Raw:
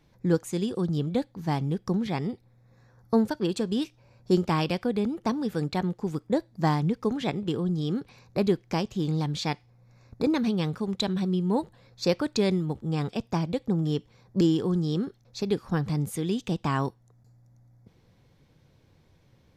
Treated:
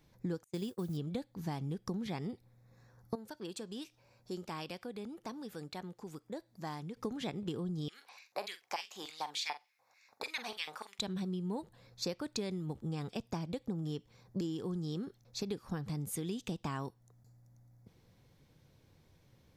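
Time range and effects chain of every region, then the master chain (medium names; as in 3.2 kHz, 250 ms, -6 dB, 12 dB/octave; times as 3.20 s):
0.44–0.97 s: gate -31 dBFS, range -30 dB + modulation noise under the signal 31 dB
3.15–6.97 s: bass shelf 260 Hz -9 dB + compression 1.5:1, threshold -50 dBFS
7.88–10.99 s: LFO high-pass square 3.4 Hz 820–2200 Hz + doubling 45 ms -12 dB
whole clip: treble shelf 7.1 kHz +8.5 dB; compression, threshold -30 dBFS; trim -4.5 dB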